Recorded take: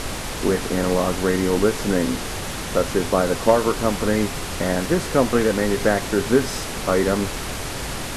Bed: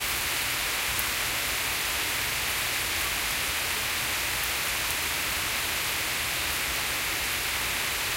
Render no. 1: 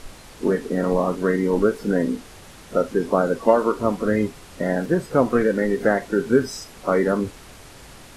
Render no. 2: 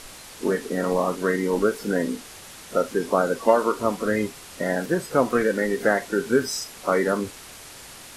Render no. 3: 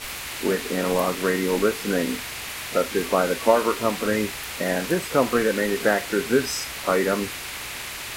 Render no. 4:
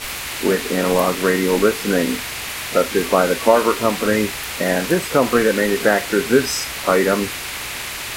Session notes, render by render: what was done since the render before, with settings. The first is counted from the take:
noise print and reduce 15 dB
tilt +2 dB/oct
add bed -5.5 dB
gain +5.5 dB; limiter -2 dBFS, peak gain reduction 2.5 dB

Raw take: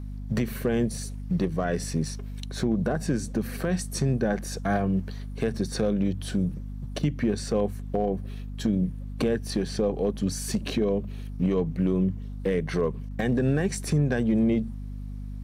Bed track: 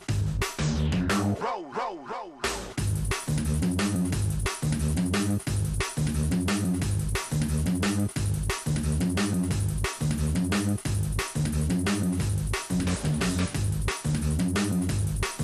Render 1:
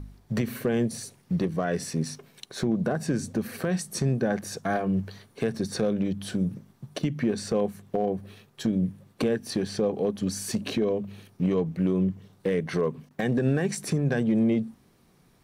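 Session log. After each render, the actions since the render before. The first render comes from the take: de-hum 50 Hz, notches 5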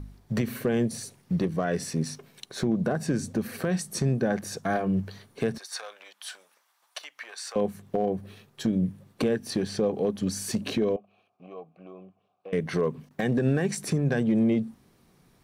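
5.58–7.56 HPF 850 Hz 24 dB/oct; 10.96–12.53 vowel filter a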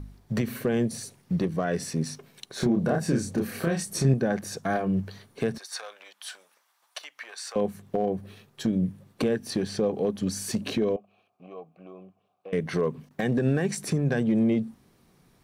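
2.57–4.14 doubler 30 ms -2.5 dB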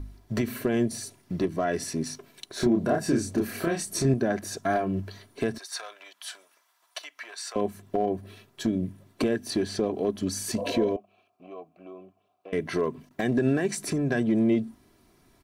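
comb 3 ms, depth 55%; 10.61–10.89 spectral repair 480–1300 Hz after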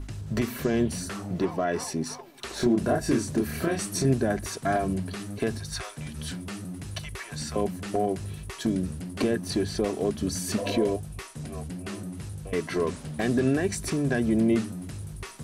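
add bed track -10.5 dB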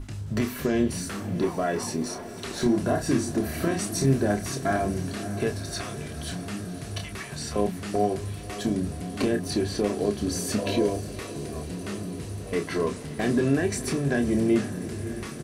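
doubler 29 ms -7 dB; diffused feedback echo 0.558 s, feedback 74%, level -14 dB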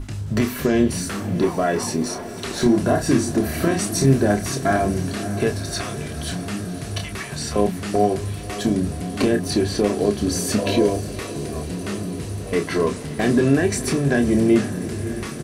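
gain +6 dB

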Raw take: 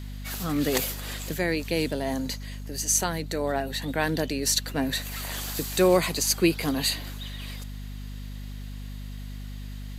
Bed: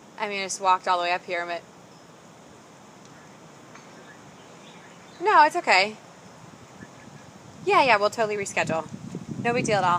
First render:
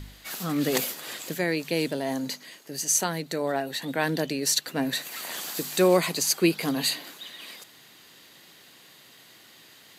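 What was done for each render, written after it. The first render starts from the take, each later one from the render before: de-hum 50 Hz, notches 5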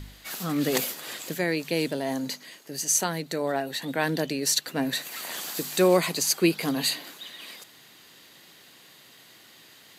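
nothing audible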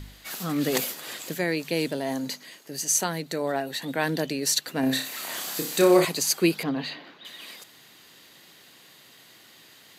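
4.8–6.05 flutter echo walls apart 5.2 m, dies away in 0.37 s; 6.63–7.25 air absorption 280 m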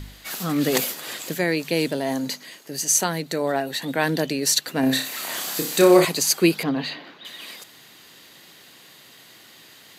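gain +4 dB

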